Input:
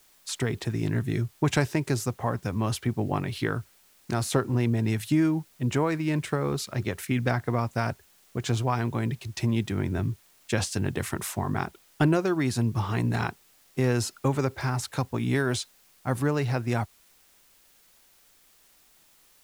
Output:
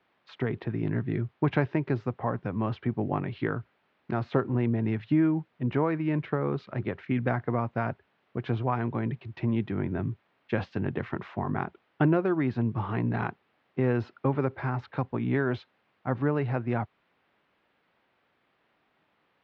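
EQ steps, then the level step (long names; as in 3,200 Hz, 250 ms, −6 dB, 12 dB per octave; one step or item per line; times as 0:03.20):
high-pass filter 120 Hz
Bessel low-pass filter 2,200 Hz, order 4
high-frequency loss of the air 170 metres
0.0 dB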